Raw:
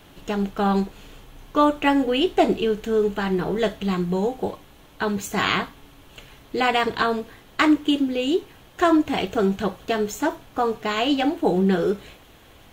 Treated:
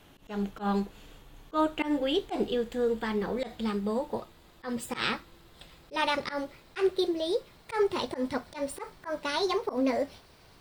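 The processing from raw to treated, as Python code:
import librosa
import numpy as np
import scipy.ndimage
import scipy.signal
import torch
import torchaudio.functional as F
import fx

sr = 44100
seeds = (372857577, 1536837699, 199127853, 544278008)

y = fx.speed_glide(x, sr, from_pct=99, to_pct=141)
y = fx.auto_swell(y, sr, attack_ms=100.0)
y = fx.dmg_crackle(y, sr, seeds[0], per_s=19.0, level_db=-54.0)
y = y * 10.0 ** (-7.0 / 20.0)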